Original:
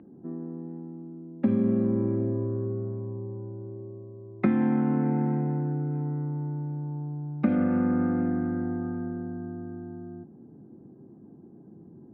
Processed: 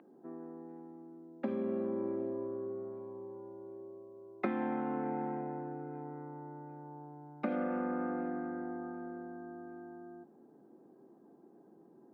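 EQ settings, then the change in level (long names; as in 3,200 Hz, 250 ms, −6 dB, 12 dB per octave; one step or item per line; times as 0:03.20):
high-pass filter 530 Hz 12 dB per octave
dynamic equaliser 2,000 Hz, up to −6 dB, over −55 dBFS, Q 0.72
+1.0 dB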